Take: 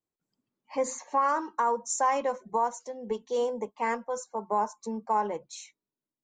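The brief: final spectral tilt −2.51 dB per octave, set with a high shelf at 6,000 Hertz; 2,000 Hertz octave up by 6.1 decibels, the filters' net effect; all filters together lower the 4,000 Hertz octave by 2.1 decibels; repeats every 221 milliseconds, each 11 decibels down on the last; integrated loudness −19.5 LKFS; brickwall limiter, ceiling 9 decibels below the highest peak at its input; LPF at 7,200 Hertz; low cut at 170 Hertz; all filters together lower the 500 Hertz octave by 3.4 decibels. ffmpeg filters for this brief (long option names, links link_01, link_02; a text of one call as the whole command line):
ffmpeg -i in.wav -af "highpass=170,lowpass=7200,equalizer=frequency=500:width_type=o:gain=-4,equalizer=frequency=2000:width_type=o:gain=9,equalizer=frequency=4000:width_type=o:gain=-9,highshelf=frequency=6000:gain=7,alimiter=limit=-23.5dB:level=0:latency=1,aecho=1:1:221|442|663:0.282|0.0789|0.0221,volume=15dB" out.wav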